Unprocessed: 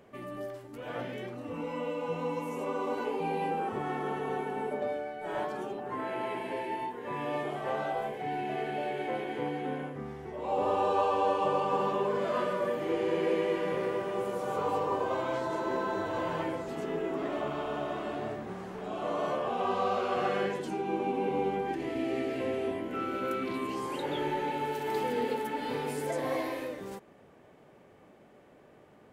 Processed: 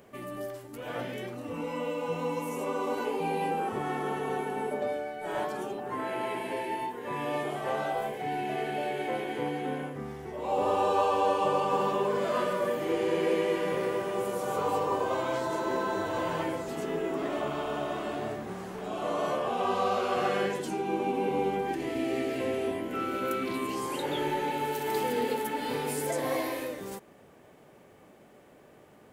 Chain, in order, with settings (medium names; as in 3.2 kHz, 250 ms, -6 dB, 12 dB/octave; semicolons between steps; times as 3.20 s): treble shelf 6.2 kHz +11 dB; trim +1.5 dB